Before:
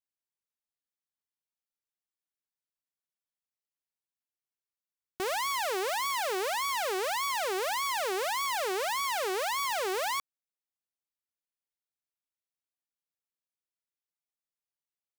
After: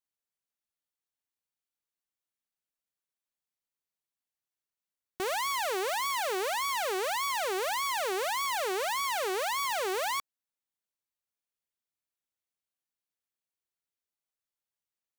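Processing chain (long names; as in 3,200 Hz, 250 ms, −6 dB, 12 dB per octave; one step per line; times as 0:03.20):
notch filter 5,100 Hz, Q 20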